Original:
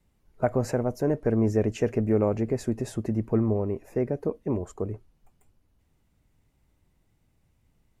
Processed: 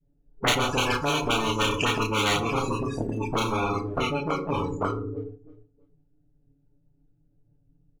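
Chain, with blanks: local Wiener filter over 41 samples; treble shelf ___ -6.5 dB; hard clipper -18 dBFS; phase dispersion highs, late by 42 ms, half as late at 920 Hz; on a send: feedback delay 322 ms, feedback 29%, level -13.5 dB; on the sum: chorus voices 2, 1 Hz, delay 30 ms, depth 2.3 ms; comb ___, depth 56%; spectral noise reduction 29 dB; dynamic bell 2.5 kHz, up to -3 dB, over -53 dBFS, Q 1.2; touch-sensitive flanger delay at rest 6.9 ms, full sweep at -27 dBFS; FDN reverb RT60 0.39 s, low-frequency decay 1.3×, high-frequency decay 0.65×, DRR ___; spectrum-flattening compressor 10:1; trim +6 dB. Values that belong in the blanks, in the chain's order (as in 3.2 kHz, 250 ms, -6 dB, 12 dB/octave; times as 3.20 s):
6.5 kHz, 7.1 ms, 7.5 dB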